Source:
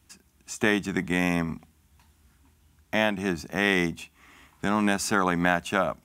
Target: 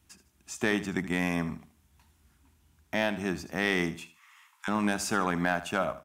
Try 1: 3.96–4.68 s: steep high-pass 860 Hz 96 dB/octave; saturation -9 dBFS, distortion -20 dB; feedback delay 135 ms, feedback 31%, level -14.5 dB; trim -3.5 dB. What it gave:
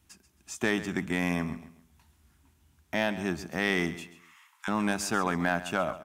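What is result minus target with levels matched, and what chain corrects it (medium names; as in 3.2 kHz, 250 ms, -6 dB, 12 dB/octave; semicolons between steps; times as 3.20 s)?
echo 58 ms late
3.96–4.68 s: steep high-pass 860 Hz 96 dB/octave; saturation -9 dBFS, distortion -20 dB; feedback delay 77 ms, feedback 31%, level -14.5 dB; trim -3.5 dB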